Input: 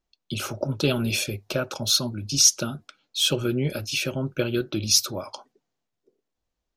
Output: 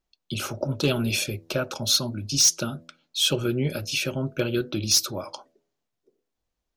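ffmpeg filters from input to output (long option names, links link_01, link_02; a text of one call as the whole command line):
ffmpeg -i in.wav -af "volume=12.5dB,asoftclip=hard,volume=-12.5dB,bandreject=frequency=82.43:width_type=h:width=4,bandreject=frequency=164.86:width_type=h:width=4,bandreject=frequency=247.29:width_type=h:width=4,bandreject=frequency=329.72:width_type=h:width=4,bandreject=frequency=412.15:width_type=h:width=4,bandreject=frequency=494.58:width_type=h:width=4,bandreject=frequency=577.01:width_type=h:width=4,bandreject=frequency=659.44:width_type=h:width=4" out.wav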